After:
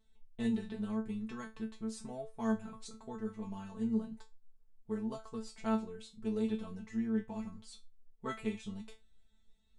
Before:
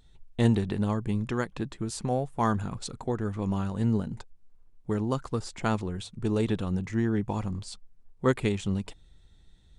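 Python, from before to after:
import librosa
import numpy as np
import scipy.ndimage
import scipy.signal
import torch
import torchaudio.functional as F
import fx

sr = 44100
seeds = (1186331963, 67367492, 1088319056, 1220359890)

y = fx.comb_fb(x, sr, f0_hz=220.0, decay_s=0.22, harmonics='all', damping=0.0, mix_pct=100)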